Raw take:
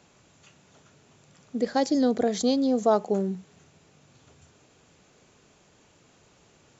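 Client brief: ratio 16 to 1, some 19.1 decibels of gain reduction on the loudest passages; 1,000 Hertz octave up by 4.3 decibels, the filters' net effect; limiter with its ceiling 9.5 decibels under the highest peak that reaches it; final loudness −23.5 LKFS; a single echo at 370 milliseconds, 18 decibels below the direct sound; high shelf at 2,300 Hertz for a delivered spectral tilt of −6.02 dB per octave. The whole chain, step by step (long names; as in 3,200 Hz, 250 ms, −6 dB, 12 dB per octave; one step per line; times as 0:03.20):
parametric band 1,000 Hz +7.5 dB
high-shelf EQ 2,300 Hz −8 dB
downward compressor 16 to 1, threshold −32 dBFS
brickwall limiter −31.5 dBFS
single-tap delay 370 ms −18 dB
level +17.5 dB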